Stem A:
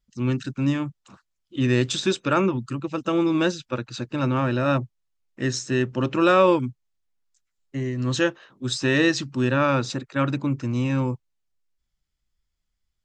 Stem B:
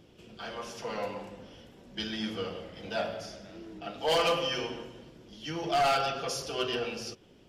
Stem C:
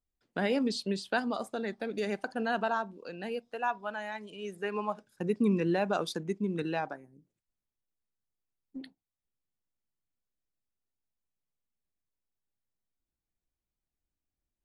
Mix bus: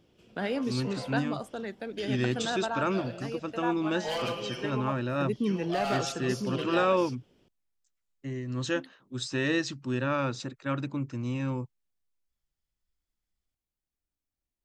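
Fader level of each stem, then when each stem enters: −8.0, −7.0, −2.0 decibels; 0.50, 0.00, 0.00 seconds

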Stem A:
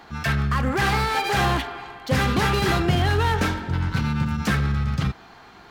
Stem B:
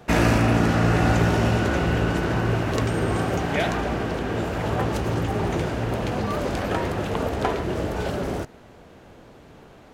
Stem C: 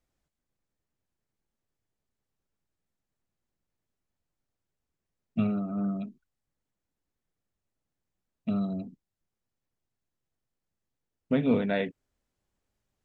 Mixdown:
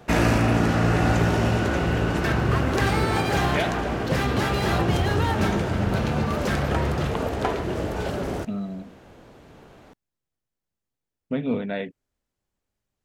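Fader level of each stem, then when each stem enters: −4.5, −1.0, −1.0 decibels; 2.00, 0.00, 0.00 seconds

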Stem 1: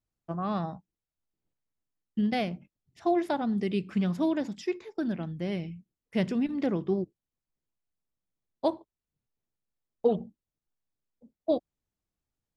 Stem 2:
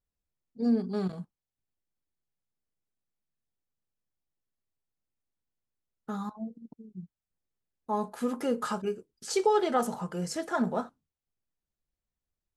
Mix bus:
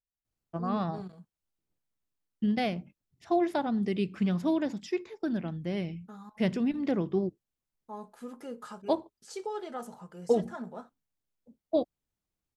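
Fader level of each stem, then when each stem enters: −0.5, −12.0 decibels; 0.25, 0.00 seconds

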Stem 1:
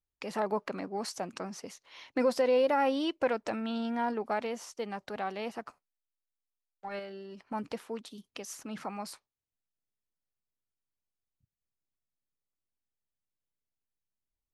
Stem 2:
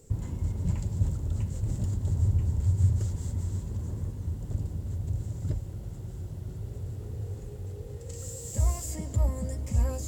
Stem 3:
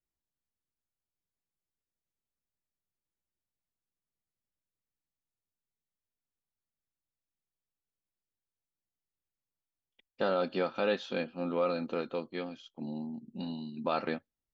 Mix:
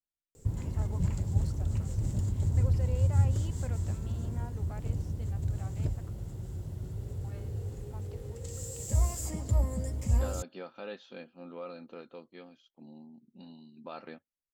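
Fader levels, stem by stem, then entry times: −17.0, −1.0, −12.0 decibels; 0.40, 0.35, 0.00 seconds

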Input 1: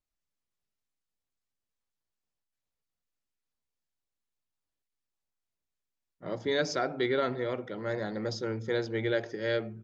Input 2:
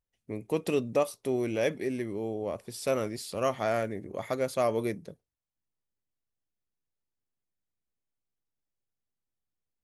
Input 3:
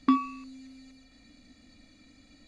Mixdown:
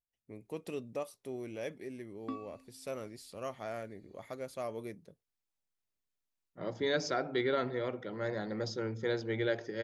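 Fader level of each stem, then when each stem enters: −3.0, −12.0, −18.0 decibels; 0.35, 0.00, 2.20 seconds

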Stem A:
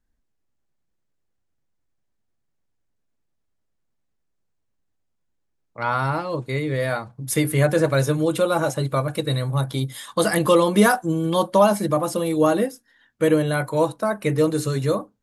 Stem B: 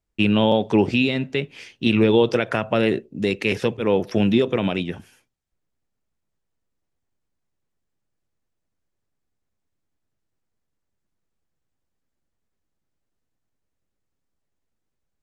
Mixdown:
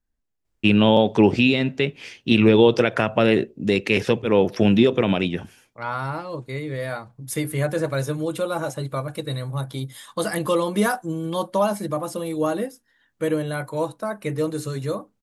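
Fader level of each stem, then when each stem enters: −5.0, +2.0 decibels; 0.00, 0.45 seconds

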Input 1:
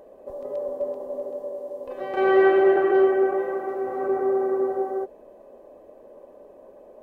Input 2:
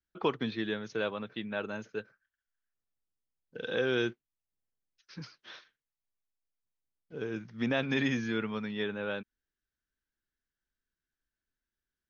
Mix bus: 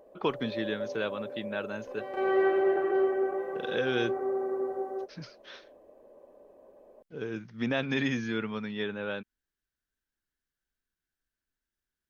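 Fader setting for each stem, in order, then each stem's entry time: −8.0, +0.5 decibels; 0.00, 0.00 seconds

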